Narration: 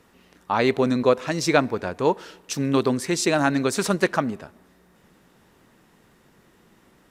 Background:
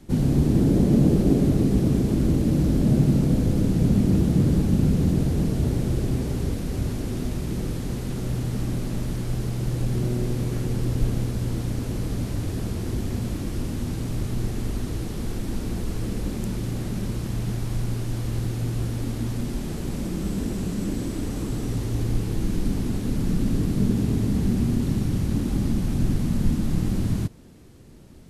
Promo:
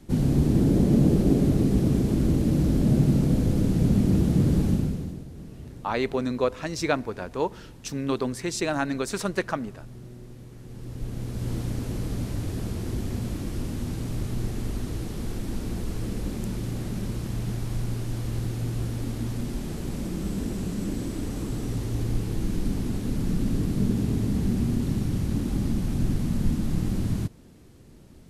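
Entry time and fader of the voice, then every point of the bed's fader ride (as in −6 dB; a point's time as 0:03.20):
5.35 s, −6.0 dB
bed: 0:04.70 −1.5 dB
0:05.26 −18.5 dB
0:10.56 −18.5 dB
0:11.51 −2.5 dB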